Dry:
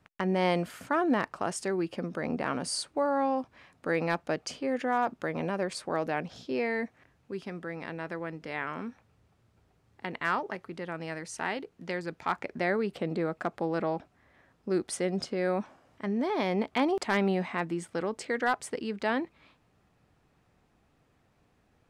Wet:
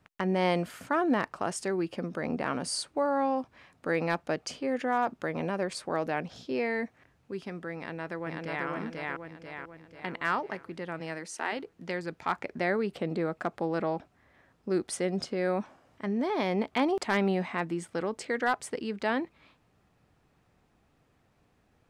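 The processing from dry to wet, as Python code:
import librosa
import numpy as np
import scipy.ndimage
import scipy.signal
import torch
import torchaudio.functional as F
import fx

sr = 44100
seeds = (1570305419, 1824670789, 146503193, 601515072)

y = fx.echo_throw(x, sr, start_s=7.77, length_s=0.9, ms=490, feedback_pct=50, wet_db=-1.0)
y = fx.highpass(y, sr, hz=fx.line((10.99, 110.0), (11.51, 300.0)), slope=24, at=(10.99, 11.51), fade=0.02)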